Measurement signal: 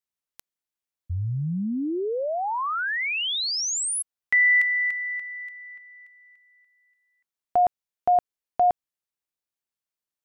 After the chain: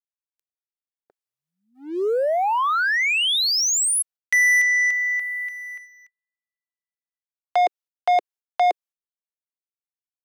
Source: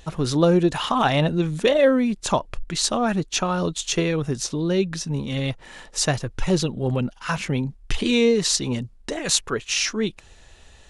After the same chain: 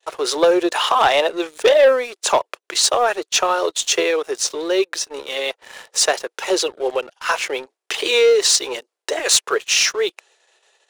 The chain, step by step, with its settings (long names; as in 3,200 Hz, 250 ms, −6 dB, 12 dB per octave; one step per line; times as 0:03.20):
noise gate −48 dBFS, range −33 dB
Butterworth high-pass 380 Hz 48 dB per octave
leveller curve on the samples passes 2